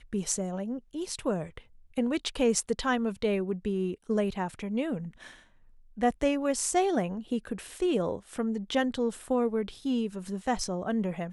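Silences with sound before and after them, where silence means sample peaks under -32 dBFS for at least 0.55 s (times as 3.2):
5.06–6.01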